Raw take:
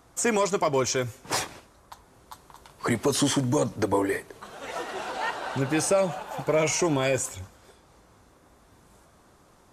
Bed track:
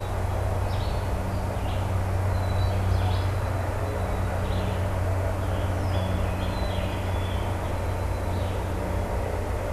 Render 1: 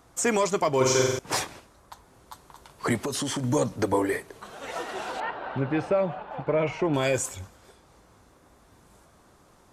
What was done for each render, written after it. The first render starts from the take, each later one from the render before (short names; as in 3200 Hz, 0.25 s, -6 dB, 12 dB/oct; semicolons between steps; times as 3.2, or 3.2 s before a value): 0.76–1.19 flutter echo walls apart 7.9 m, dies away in 1.1 s; 3.03–3.44 compressor, threshold -26 dBFS; 5.2–6.94 air absorption 410 m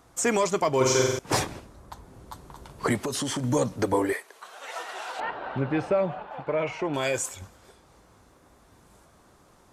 1.31–2.87 low shelf 500 Hz +11 dB; 4.13–5.19 HPF 710 Hz; 6.27–7.42 low shelf 370 Hz -7.5 dB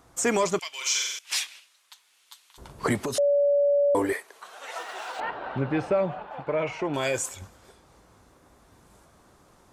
0.59–2.58 resonant high-pass 2800 Hz, resonance Q 2; 3.18–3.95 bleep 572 Hz -18 dBFS; 4.78–5.36 median filter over 3 samples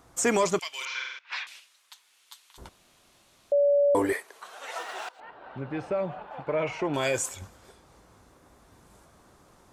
0.85–1.47 speaker cabinet 250–3300 Hz, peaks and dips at 280 Hz -10 dB, 420 Hz -6 dB, 670 Hz -4 dB, 1000 Hz +5 dB, 1500 Hz +6 dB, 3100 Hz -8 dB; 2.69–3.52 room tone; 5.09–6.74 fade in, from -22 dB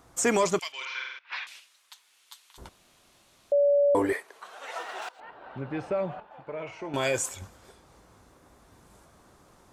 0.72–1.43 Gaussian blur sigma 1.6 samples; 3.7–5.02 high shelf 4600 Hz -6 dB; 6.2–6.94 resonator 110 Hz, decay 0.6 s, mix 70%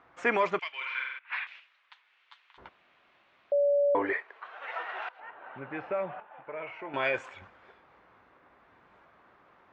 LPF 2300 Hz 24 dB/oct; tilt +4 dB/oct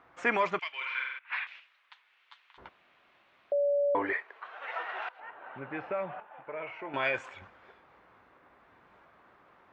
dynamic EQ 430 Hz, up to -4 dB, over -37 dBFS, Q 1.3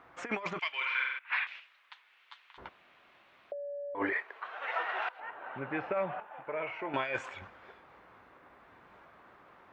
negative-ratio compressor -32 dBFS, ratio -0.5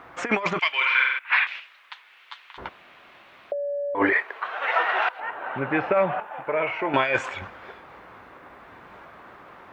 gain +11.5 dB